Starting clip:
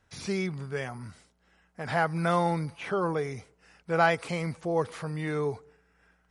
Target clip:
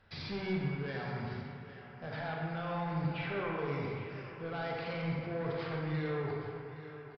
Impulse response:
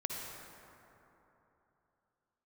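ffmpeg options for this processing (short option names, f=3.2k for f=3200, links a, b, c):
-filter_complex "[0:a]bandreject=f=60:t=h:w=6,bandreject=f=120:t=h:w=6,bandreject=f=180:t=h:w=6,bandreject=f=240:t=h:w=6,bandreject=f=300:t=h:w=6,bandreject=f=360:t=h:w=6,bandreject=f=420:t=h:w=6,areverse,acompressor=threshold=-35dB:ratio=5,areverse,alimiter=level_in=7dB:limit=-24dB:level=0:latency=1:release=403,volume=-7dB,acontrast=57,aresample=11025,aeval=exprs='0.0596*sin(PI/2*1.58*val(0)/0.0596)':c=same,aresample=44100,atempo=0.88,aecho=1:1:817:0.2[a];[1:a]atrim=start_sample=2205,asetrate=66150,aresample=44100[b];[a][b]afir=irnorm=-1:irlink=0,volume=-5.5dB"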